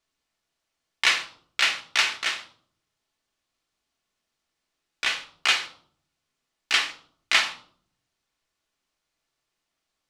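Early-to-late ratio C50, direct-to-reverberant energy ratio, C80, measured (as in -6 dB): 12.0 dB, 4.0 dB, 16.5 dB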